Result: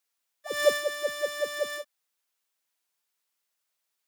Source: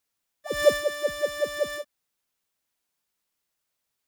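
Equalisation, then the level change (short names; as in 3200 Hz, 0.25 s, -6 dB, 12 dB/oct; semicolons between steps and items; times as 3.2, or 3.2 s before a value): HPF 640 Hz 6 dB/oct; 0.0 dB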